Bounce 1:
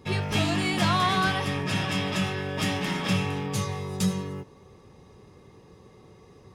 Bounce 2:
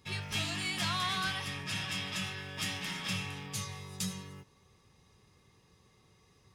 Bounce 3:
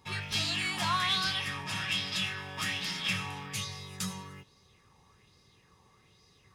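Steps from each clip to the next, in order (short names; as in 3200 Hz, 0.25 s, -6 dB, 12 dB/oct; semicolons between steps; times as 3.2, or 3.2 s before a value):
passive tone stack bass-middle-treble 5-5-5; gain +3 dB
LFO bell 1.2 Hz 870–4900 Hz +10 dB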